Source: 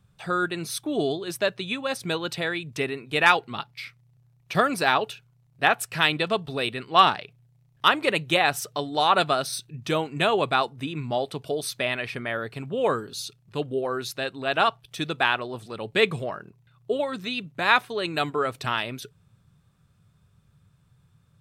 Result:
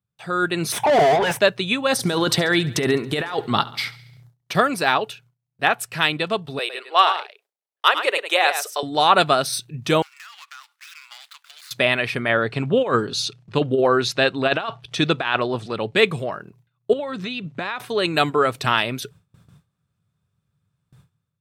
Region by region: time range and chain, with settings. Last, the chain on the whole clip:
0.72–1.39 s: peaking EQ 900 Hz +14 dB 0.5 oct + static phaser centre 1.2 kHz, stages 6 + overdrive pedal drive 31 dB, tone 1.7 kHz, clips at -18 dBFS
1.92–4.53 s: peaking EQ 2.5 kHz -10.5 dB 0.24 oct + compressor with a negative ratio -31 dBFS + feedback delay 69 ms, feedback 59%, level -19 dB
6.59–8.83 s: steep high-pass 400 Hz + delay 105 ms -9.5 dB
10.02–11.71 s: median filter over 15 samples + steep high-pass 1.3 kHz + compression 8:1, threshold -47 dBFS
12.29–15.96 s: low-pass 6 kHz + compressor with a negative ratio -26 dBFS, ratio -0.5
16.93–17.80 s: compression 5:1, threshold -34 dBFS + distance through air 71 m
whole clip: high-pass 73 Hz; gate with hold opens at -50 dBFS; level rider; trim -1 dB

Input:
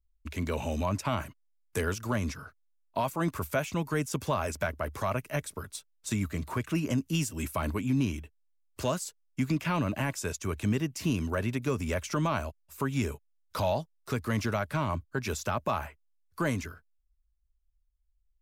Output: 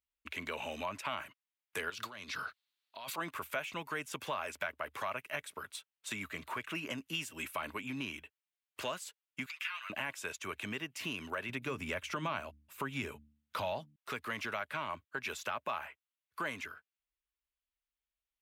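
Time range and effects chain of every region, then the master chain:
1.90–3.18 s: high-pass 51 Hz + peaking EQ 4.2 kHz +13.5 dB 0.73 oct + compressor with a negative ratio -39 dBFS
9.46–9.90 s: compression 2:1, threshold -33 dBFS + high-pass 1.3 kHz 24 dB/octave + comb 7.5 ms, depth 70%
11.49–13.96 s: bass shelf 260 Hz +10.5 dB + de-hum 73.76 Hz, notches 4
whole clip: high-pass 1.4 kHz 6 dB/octave; resonant high shelf 4 kHz -8.5 dB, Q 1.5; compression 2:1, threshold -41 dBFS; trim +3.5 dB

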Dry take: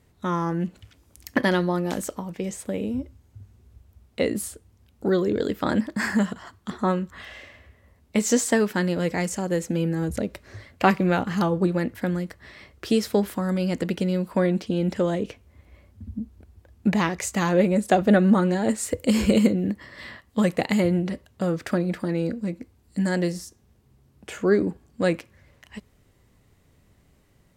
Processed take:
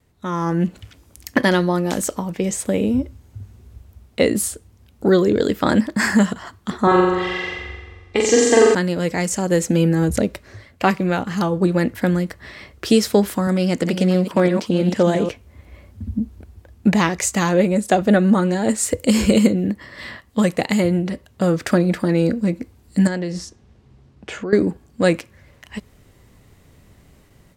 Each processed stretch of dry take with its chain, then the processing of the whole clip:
6.87–8.75 s: low-pass 4.7 kHz + comb 2.5 ms, depth 87% + flutter echo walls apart 7.6 m, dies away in 1.3 s
13.47–15.29 s: chunks repeated in reverse 337 ms, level -8.5 dB + high-pass 110 Hz + loudspeaker Doppler distortion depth 0.12 ms
23.07–24.53 s: low-pass 5.2 kHz + compression 5:1, threshold -30 dBFS
whole clip: gate with hold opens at -52 dBFS; dynamic bell 7.3 kHz, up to +4 dB, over -47 dBFS, Q 0.78; level rider gain up to 10.5 dB; trim -1 dB

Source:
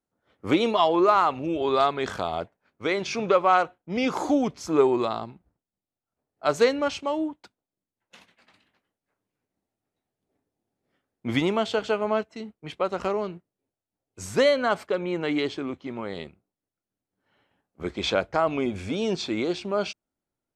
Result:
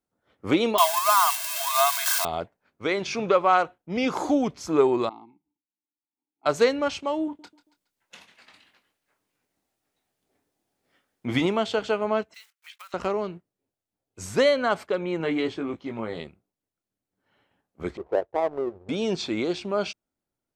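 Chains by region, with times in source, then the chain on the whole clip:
0.78–2.25 s: zero-crossing glitches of -15 dBFS + brick-wall FIR high-pass 640 Hz + comb 1.9 ms, depth 70%
5.09–6.46 s: vowel filter u + hum notches 50/100/150 Hz
7.25–11.46 s: doubling 24 ms -9 dB + feedback delay 139 ms, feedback 37%, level -20 dB + tape noise reduction on one side only encoder only
12.34–12.94 s: block-companded coder 5-bit + high-pass 1.4 kHz 24 dB/octave + compression 10:1, threshold -40 dBFS
15.18–16.20 s: dynamic bell 5.1 kHz, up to -6 dB, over -47 dBFS, Q 0.7 + doubling 18 ms -5.5 dB
17.97–18.89 s: steep low-pass 1 kHz 48 dB/octave + resonant low shelf 310 Hz -6.5 dB, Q 3 + power-law waveshaper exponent 1.4
whole clip: none

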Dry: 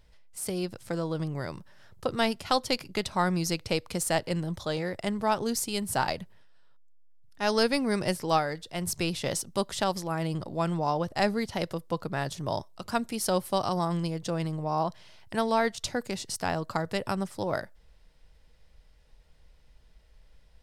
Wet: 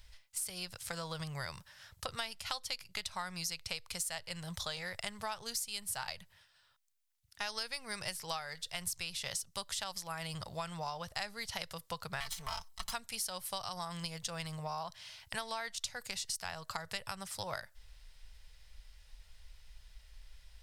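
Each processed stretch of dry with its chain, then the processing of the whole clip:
12.20–12.93 s: comb filter that takes the minimum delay 0.97 ms + comb 4.5 ms, depth 73%
whole clip: amplifier tone stack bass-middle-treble 10-0-10; compression 6:1, threshold -45 dBFS; trim +8.5 dB

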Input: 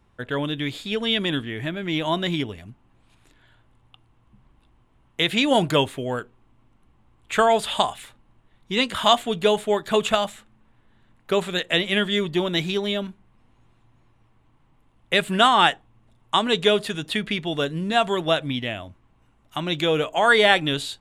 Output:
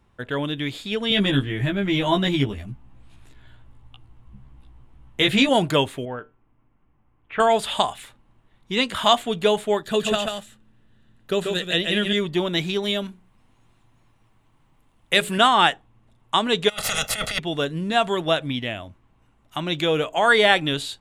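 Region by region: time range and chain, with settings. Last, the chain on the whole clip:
1.10–5.49 s: bass shelf 140 Hz +11.5 dB + doubling 15 ms -2 dB
6.05–7.40 s: low-pass 2.6 kHz 24 dB/octave + feedback comb 150 Hz, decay 0.26 s, mix 50%
9.83–12.13 s: peaking EQ 960 Hz -8 dB 1.1 oct + band-stop 2.2 kHz, Q 7.2 + delay 138 ms -4.5 dB
12.82–15.38 s: treble shelf 4.4 kHz +8 dB + hum notches 60/120/180/240/300/360/420/480/540 Hz
16.68–17.38 s: spectral peaks clipped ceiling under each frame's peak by 28 dB + comb 1.5 ms, depth 85% + compressor with a negative ratio -26 dBFS, ratio -0.5
whole clip: none

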